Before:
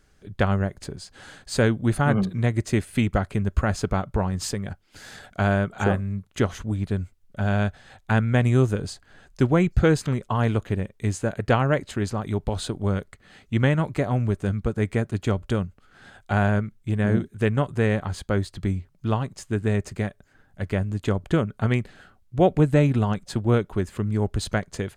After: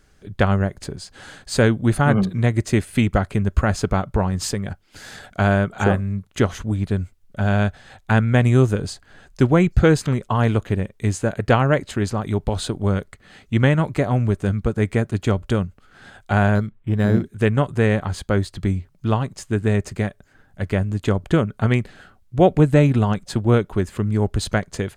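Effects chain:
0:16.55–0:17.24: linearly interpolated sample-rate reduction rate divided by 8×
level +4 dB

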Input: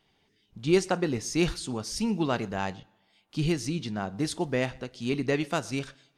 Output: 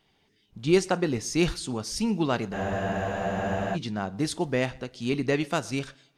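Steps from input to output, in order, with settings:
frozen spectrum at 0:02.56, 1.18 s
level +1.5 dB

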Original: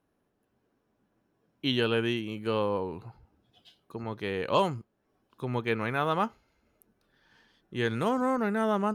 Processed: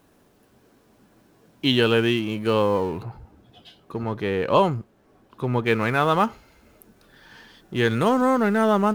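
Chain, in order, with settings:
mu-law and A-law mismatch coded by mu
0:03.03–0:05.66: high-shelf EQ 3,000 Hz −9.5 dB
level +7 dB

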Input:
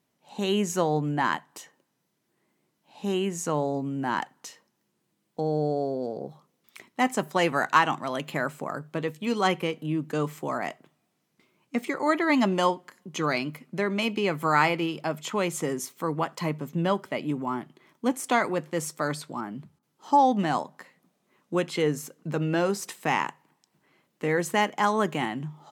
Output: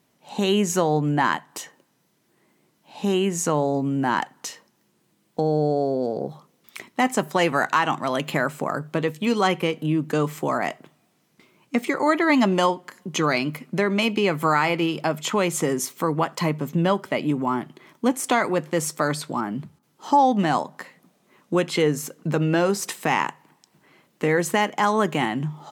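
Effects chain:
downward compressor 1.5 to 1, threshold −33 dBFS, peak gain reduction 7 dB
boost into a limiter +15.5 dB
level −6.5 dB

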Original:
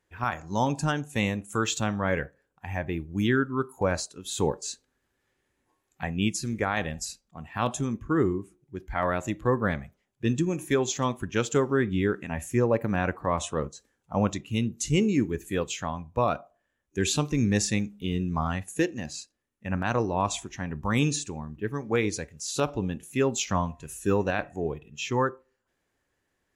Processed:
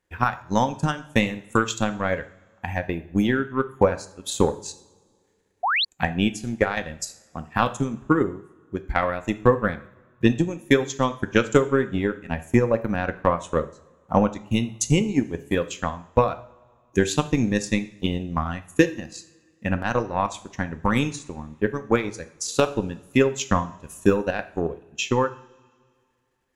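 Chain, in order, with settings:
transient designer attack +12 dB, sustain −11 dB
coupled-rooms reverb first 0.51 s, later 2.2 s, from −21 dB, DRR 9.5 dB
sound drawn into the spectrogram rise, 0:05.63–0:05.85, 650–4,700 Hz −20 dBFS
level −1.5 dB

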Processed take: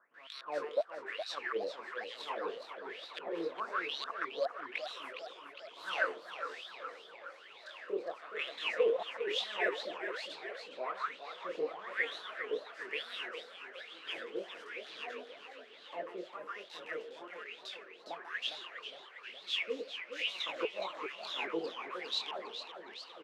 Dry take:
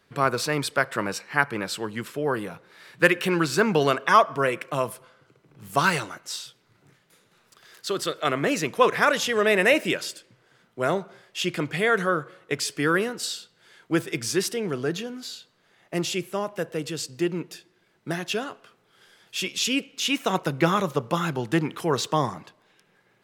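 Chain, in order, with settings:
compressor on every frequency bin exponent 0.6
high-pass filter 190 Hz 24 dB per octave
high-shelf EQ 5,700 Hz +3.5 dB
notch filter 410 Hz, Q 12
hum removal 405.1 Hz, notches 6
chorus effect 0.2 Hz, delay 19 ms, depth 7.2 ms
gate with flip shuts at −7 dBFS, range −29 dB
LFO wah 1.1 Hz 430–4,000 Hz, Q 12
multiband delay without the direct sound lows, highs 140 ms, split 1,100 Hz
feedback echo with a swinging delay time 411 ms, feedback 63%, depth 185 cents, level −9 dB
level +1 dB

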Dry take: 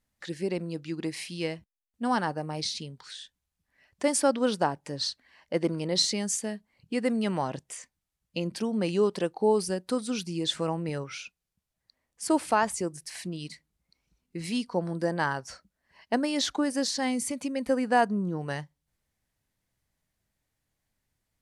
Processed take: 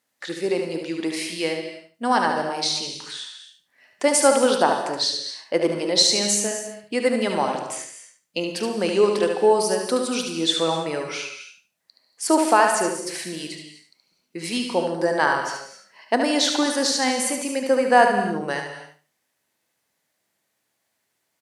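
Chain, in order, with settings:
high-pass filter 330 Hz 12 dB per octave
repeating echo 73 ms, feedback 24%, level −6 dB
reverb whose tail is shaped and stops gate 290 ms flat, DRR 6.5 dB
level +7.5 dB

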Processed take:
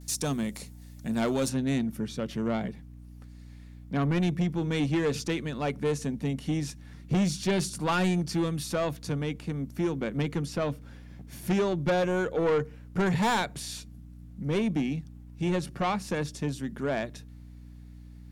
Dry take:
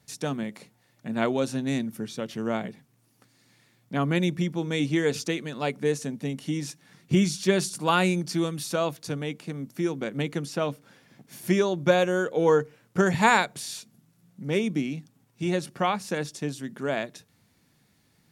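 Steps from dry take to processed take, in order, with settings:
noise gate with hold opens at −57 dBFS
bass and treble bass +4 dB, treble +12 dB, from 0:01.48 treble −3 dB
mains hum 60 Hz, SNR 20 dB
soft clipping −21 dBFS, distortion −10 dB

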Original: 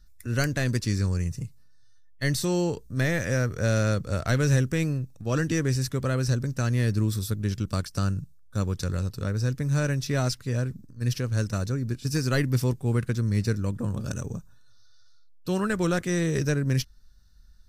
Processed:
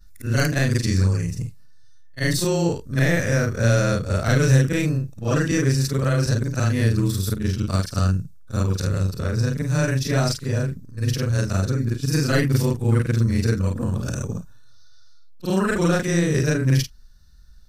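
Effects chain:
every overlapping window played backwards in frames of 105 ms
level +8.5 dB

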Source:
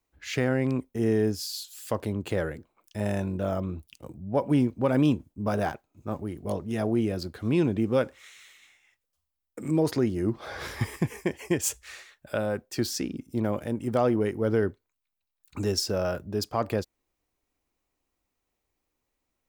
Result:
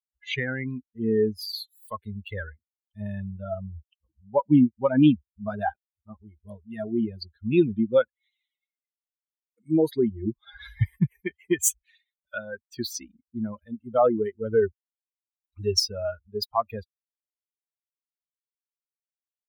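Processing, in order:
spectral dynamics exaggerated over time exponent 3
level +9 dB

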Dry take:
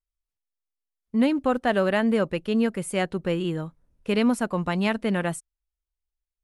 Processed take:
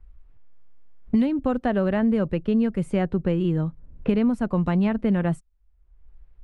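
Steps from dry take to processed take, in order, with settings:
low-pass that shuts in the quiet parts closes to 2,100 Hz, open at −22.5 dBFS
RIAA equalisation playback
multiband upward and downward compressor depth 100%
level −4.5 dB

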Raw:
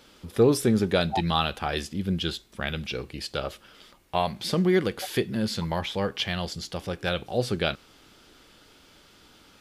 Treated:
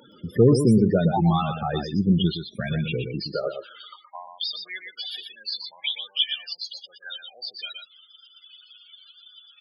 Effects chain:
in parallel at −2.5 dB: brickwall limiter −18 dBFS, peak gain reduction 9.5 dB
on the sum: spectral peaks only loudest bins 16
pitch vibrato 3.6 Hz 12 cents
high-pass filter sweep 130 Hz → 3,000 Hz, 0:03.12–0:04.29
on a send: single-tap delay 120 ms −7.5 dB
on the sum: one half of a high-frequency compander encoder only
level −1.5 dB

